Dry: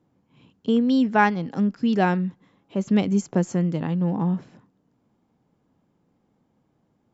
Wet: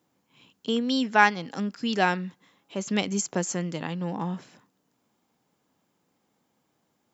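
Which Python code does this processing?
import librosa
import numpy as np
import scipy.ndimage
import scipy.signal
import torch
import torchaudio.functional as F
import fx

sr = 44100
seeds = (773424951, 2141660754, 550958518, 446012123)

y = fx.tilt_eq(x, sr, slope=3.5)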